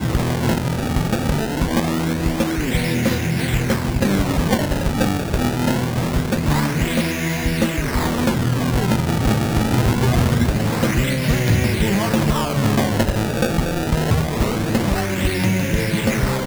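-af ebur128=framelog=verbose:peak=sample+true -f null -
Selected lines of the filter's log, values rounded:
Integrated loudness:
  I:         -19.5 LUFS
  Threshold: -29.5 LUFS
Loudness range:
  LRA:         2.0 LU
  Threshold: -39.4 LUFS
  LRA low:   -20.2 LUFS
  LRA high:  -18.3 LUFS
Sample peak:
  Peak:       -7.3 dBFS
True peak:
  Peak:       -5.5 dBFS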